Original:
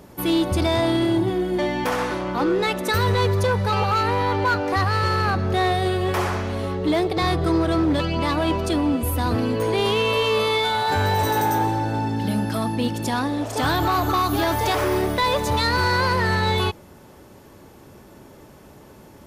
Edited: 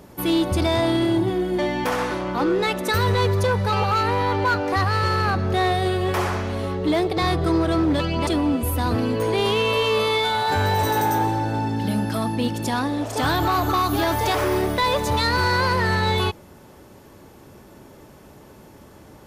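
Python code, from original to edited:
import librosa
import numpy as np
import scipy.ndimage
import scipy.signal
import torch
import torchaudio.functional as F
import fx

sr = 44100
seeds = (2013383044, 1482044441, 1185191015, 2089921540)

y = fx.edit(x, sr, fx.cut(start_s=8.27, length_s=0.4), tone=tone)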